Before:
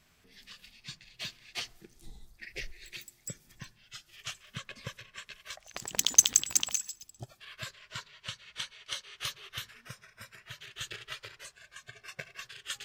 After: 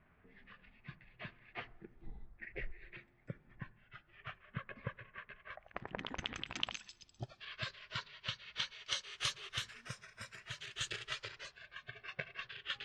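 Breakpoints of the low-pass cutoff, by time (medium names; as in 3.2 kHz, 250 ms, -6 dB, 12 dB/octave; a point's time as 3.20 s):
low-pass 24 dB/octave
6.06 s 2 kHz
7.11 s 4.9 kHz
8.53 s 4.9 kHz
9.18 s 9.1 kHz
11.04 s 9.1 kHz
11.75 s 3.6 kHz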